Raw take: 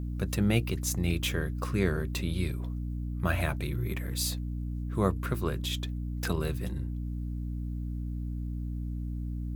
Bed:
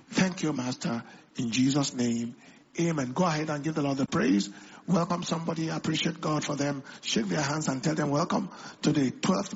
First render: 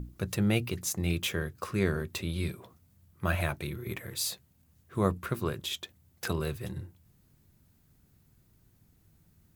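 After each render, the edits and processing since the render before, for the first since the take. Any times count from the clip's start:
mains-hum notches 60/120/180/240/300 Hz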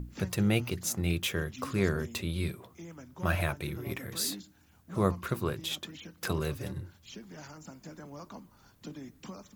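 mix in bed −19 dB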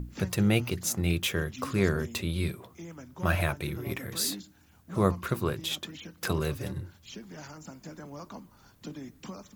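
level +2.5 dB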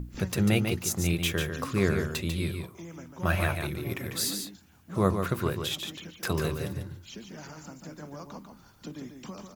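single-tap delay 145 ms −6.5 dB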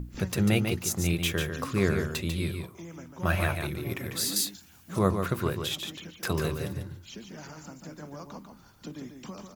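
0:04.36–0:04.99: high-shelf EQ 2,200 Hz +10.5 dB

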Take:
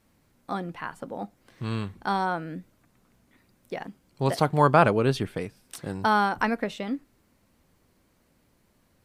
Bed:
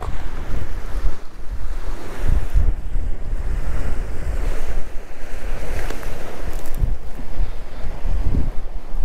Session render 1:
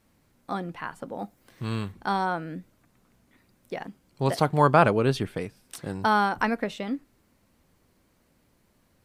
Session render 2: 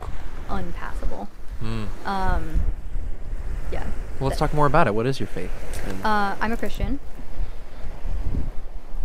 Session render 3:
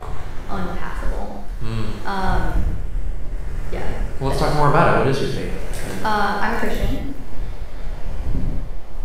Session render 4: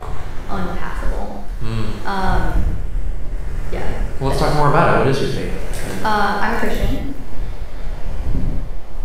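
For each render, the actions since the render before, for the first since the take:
0:01.18–0:01.92: high-shelf EQ 11,000 Hz +10.5 dB
mix in bed −6 dB
peak hold with a decay on every bin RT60 0.42 s; reverb whose tail is shaped and stops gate 220 ms flat, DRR 1 dB
level +2.5 dB; brickwall limiter −3 dBFS, peak gain reduction 2.5 dB

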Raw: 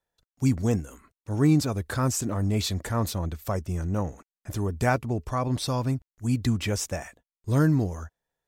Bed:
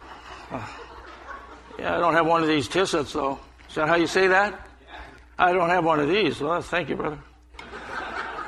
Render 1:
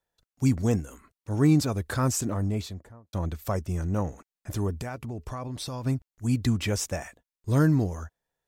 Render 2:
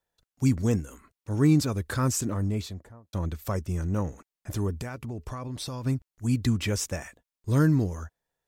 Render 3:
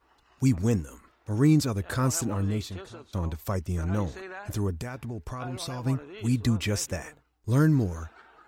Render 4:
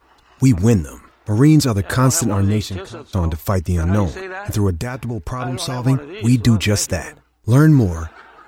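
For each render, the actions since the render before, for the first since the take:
0:02.19–0:03.13: fade out and dull; 0:04.78–0:05.86: downward compressor 8 to 1, threshold −31 dBFS
dynamic equaliser 720 Hz, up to −6 dB, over −47 dBFS, Q 2.6
mix in bed −22 dB
level +11 dB; brickwall limiter −3 dBFS, peak gain reduction 3 dB

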